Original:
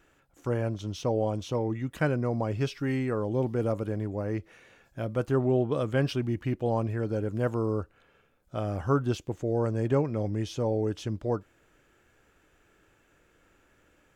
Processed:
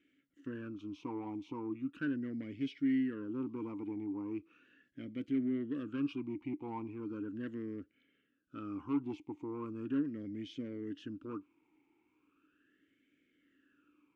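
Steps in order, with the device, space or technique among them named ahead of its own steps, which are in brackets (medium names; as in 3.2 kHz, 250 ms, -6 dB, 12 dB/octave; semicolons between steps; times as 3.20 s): talk box (valve stage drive 24 dB, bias 0.25; talking filter i-u 0.38 Hz); trim +4 dB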